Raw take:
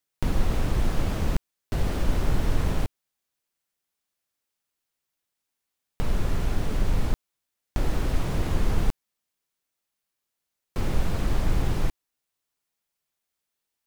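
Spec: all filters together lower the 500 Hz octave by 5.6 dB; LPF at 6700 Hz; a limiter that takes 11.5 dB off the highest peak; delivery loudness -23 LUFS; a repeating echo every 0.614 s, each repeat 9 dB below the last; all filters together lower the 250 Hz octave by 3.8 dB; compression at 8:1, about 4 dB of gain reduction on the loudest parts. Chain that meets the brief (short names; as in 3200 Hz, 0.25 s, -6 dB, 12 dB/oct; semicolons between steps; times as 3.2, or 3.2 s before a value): LPF 6700 Hz; bell 250 Hz -4 dB; bell 500 Hz -6 dB; compressor 8:1, threshold -20 dBFS; limiter -26 dBFS; feedback echo 0.614 s, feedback 35%, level -9 dB; gain +16.5 dB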